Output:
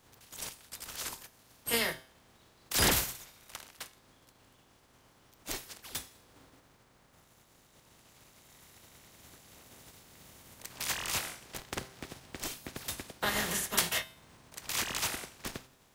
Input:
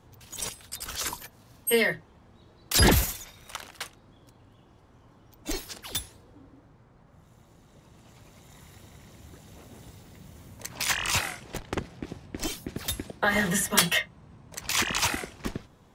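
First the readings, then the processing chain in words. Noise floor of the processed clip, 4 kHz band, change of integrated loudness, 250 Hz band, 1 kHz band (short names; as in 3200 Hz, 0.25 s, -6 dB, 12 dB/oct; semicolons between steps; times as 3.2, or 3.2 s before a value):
-64 dBFS, -5.5 dB, -6.5 dB, -11.0 dB, -6.5 dB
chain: spectral contrast lowered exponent 0.49; resonator 130 Hz, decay 0.56 s, harmonics all, mix 50%; gain -2 dB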